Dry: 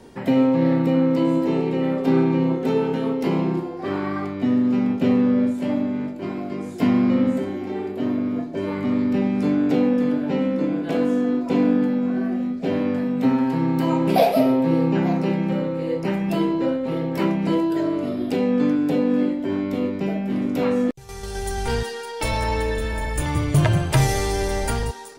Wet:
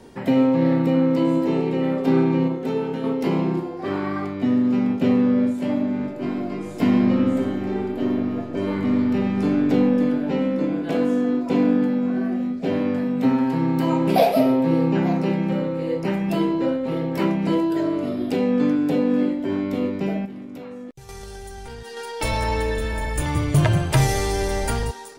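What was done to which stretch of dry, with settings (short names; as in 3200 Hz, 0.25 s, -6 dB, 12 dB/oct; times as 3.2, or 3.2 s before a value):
2.48–3.04 gain -3.5 dB
5.76–9.62 reverb throw, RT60 2.9 s, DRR 5 dB
20.25–21.97 compressor 16:1, threshold -32 dBFS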